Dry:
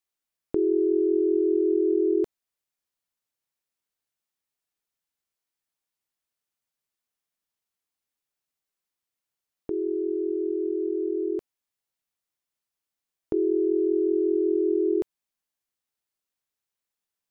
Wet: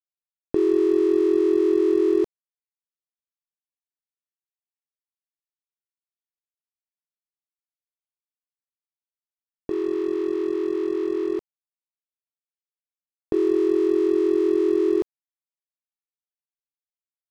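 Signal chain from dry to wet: crossover distortion -41.5 dBFS; trim +4 dB

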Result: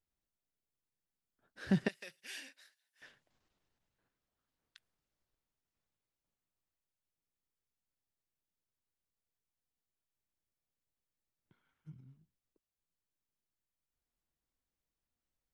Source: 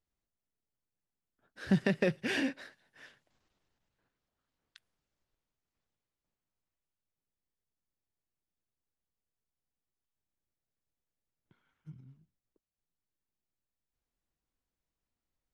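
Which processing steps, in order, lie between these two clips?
1.88–3.02 s: differentiator; trim -3 dB

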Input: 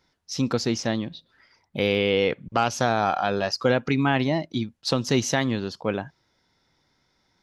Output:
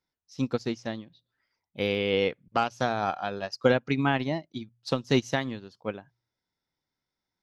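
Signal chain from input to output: de-hum 59.33 Hz, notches 2; upward expansion 2.5:1, over -31 dBFS; trim +1.5 dB

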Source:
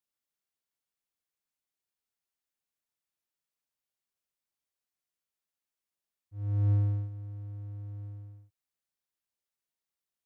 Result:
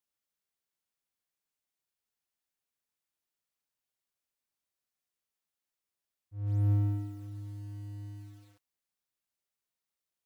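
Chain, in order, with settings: bit-crushed delay 144 ms, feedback 35%, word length 10-bit, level -5 dB

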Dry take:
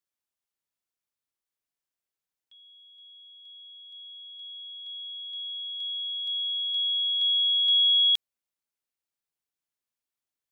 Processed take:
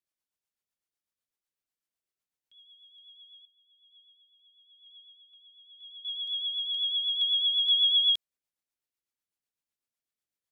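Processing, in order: rotary cabinet horn 8 Hz; 3.45–6.05 s: talking filter a-i 1 Hz

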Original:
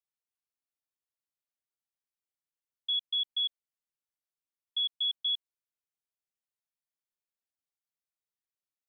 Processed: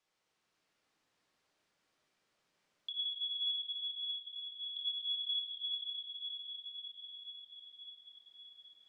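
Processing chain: chunks repeated in reverse 252 ms, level -6.5 dB; dynamic bell 3 kHz, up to -7 dB, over -42 dBFS, Q 0.82; peak limiter -33.5 dBFS, peak gain reduction 5.5 dB; distance through air 89 m; echo that smears into a reverb 554 ms, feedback 55%, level -5.5 dB; reverberation RT60 2.7 s, pre-delay 6 ms, DRR -3 dB; three bands compressed up and down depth 40%; trim +3 dB

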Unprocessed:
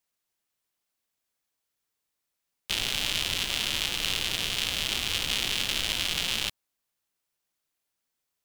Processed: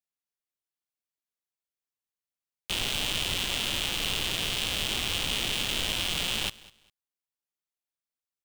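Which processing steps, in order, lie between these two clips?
waveshaping leveller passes 3; feedback delay 201 ms, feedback 24%, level -21.5 dB; trim -8 dB

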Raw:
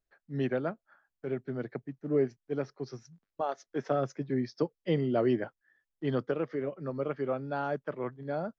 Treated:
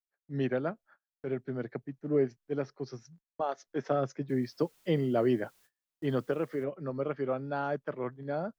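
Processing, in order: 4.28–6.63 s: added noise white -67 dBFS; gate -58 dBFS, range -27 dB

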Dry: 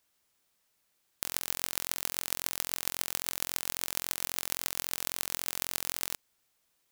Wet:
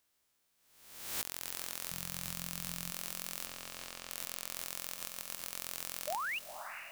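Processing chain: reverse spectral sustain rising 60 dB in 0.92 s; 1.91–2.91 s: resonant low shelf 230 Hz +10 dB, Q 3; 4.92–5.51 s: level held to a coarse grid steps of 11 dB; peak limiter -8 dBFS, peak gain reduction 8 dB; 3.46–4.10 s: distance through air 73 m; 6.07–6.39 s: painted sound rise 550–3000 Hz -32 dBFS; echo that smears into a reverb 465 ms, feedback 42%, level -8.5 dB; trim -5 dB

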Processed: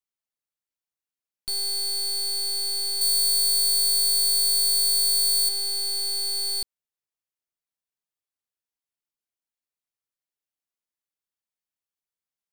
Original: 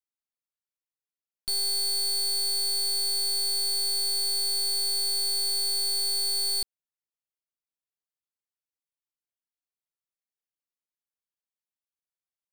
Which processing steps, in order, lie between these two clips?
3.01–5.49 s: treble shelf 5.3 kHz +10 dB

